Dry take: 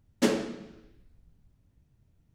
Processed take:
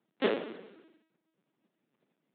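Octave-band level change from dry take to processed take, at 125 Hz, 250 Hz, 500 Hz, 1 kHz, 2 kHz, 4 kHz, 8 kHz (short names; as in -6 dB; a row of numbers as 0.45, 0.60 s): -9.5 dB, -8.5 dB, -1.0 dB, -1.5 dB, -1.0 dB, -3.5 dB, under -35 dB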